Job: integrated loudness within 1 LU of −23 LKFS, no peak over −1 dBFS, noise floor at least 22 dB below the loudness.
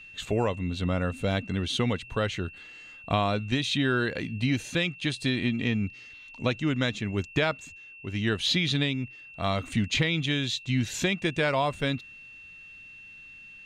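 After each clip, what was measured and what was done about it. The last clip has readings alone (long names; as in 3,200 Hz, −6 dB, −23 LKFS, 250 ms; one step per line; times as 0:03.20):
interfering tone 2,700 Hz; level of the tone −45 dBFS; integrated loudness −28.0 LKFS; sample peak −10.5 dBFS; target loudness −23.0 LKFS
→ notch filter 2,700 Hz, Q 30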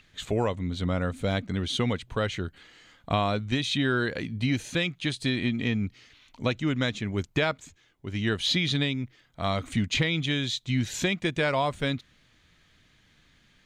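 interfering tone none found; integrated loudness −28.0 LKFS; sample peak −11.0 dBFS; target loudness −23.0 LKFS
→ level +5 dB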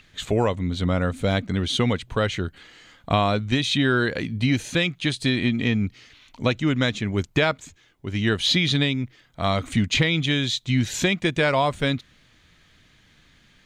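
integrated loudness −23.0 LKFS; sample peak −6.0 dBFS; background noise floor −58 dBFS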